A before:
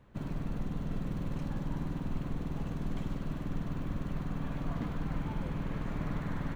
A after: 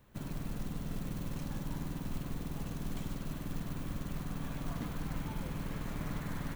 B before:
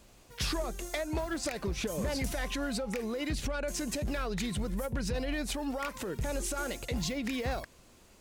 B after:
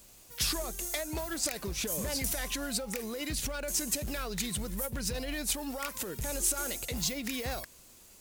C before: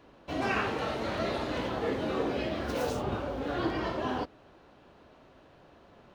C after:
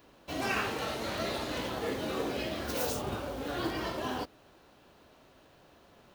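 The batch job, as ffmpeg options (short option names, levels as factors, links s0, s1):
-af "aemphasis=mode=production:type=75kf,acrusher=bits=5:mode=log:mix=0:aa=0.000001,volume=0.668"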